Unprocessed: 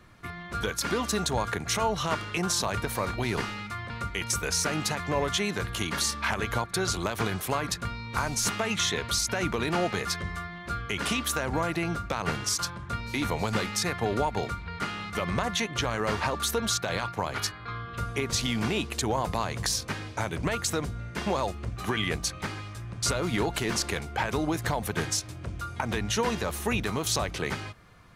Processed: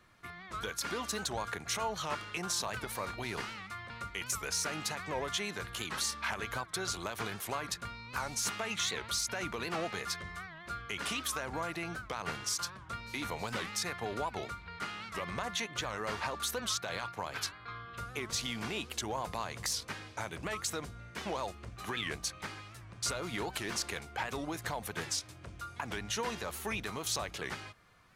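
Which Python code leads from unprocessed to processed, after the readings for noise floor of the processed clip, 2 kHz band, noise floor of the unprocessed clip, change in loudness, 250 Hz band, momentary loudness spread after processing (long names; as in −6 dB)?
−51 dBFS, −6.5 dB, −42 dBFS, −7.5 dB, −11.5 dB, 9 LU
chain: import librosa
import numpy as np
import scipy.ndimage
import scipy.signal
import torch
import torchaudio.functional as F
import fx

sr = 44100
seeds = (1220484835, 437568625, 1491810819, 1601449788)

p1 = np.clip(x, -10.0 ** (-23.0 / 20.0), 10.0 ** (-23.0 / 20.0))
p2 = x + F.gain(torch.from_numpy(p1), -10.5).numpy()
p3 = fx.low_shelf(p2, sr, hz=450.0, db=-7.5)
p4 = fx.record_warp(p3, sr, rpm=78.0, depth_cents=160.0)
y = F.gain(torch.from_numpy(p4), -8.0).numpy()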